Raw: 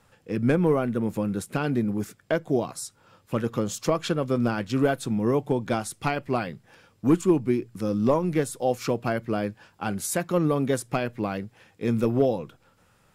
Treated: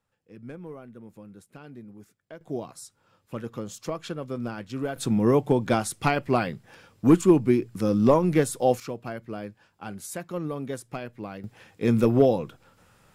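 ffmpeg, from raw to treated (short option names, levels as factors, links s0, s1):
-af "asetnsamples=n=441:p=0,asendcmd='2.41 volume volume -8dB;4.96 volume volume 3dB;8.8 volume volume -8.5dB;11.44 volume volume 3dB',volume=0.112"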